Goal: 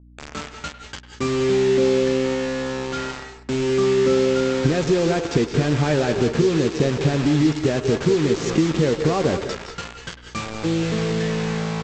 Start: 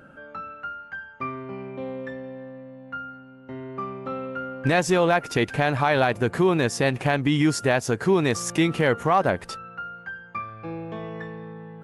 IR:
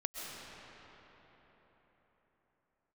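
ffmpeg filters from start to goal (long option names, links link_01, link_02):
-filter_complex "[0:a]lowshelf=frequency=580:width_type=q:width=1.5:gain=10.5,acompressor=threshold=-16dB:ratio=20,aresample=16000,acrusher=bits=4:mix=0:aa=0.000001,aresample=44100,aeval=exprs='val(0)+0.00398*(sin(2*PI*60*n/s)+sin(2*PI*2*60*n/s)/2+sin(2*PI*3*60*n/s)/3+sin(2*PI*4*60*n/s)/4+sin(2*PI*5*60*n/s)/5)':channel_layout=same,asplit=2[link_01][link_02];[link_02]asoftclip=type=tanh:threshold=-21dB,volume=-11.5dB[link_03];[link_01][link_03]amix=inputs=2:normalize=0,asplit=2[link_04][link_05];[link_05]adelay=13,volume=-12dB[link_06];[link_04][link_06]amix=inputs=2:normalize=0,asplit=2[link_07][link_08];[link_08]adelay=100,highpass=300,lowpass=3400,asoftclip=type=hard:threshold=-17.5dB,volume=-13dB[link_09];[link_07][link_09]amix=inputs=2:normalize=0[link_10];[1:a]atrim=start_sample=2205,atrim=end_sample=6174,asetrate=29988,aresample=44100[link_11];[link_10][link_11]afir=irnorm=-1:irlink=0,adynamicequalizer=threshold=0.00562:dfrequency=6300:dqfactor=0.7:tfrequency=6300:tqfactor=0.7:attack=5:release=100:ratio=0.375:range=3:mode=cutabove:tftype=highshelf"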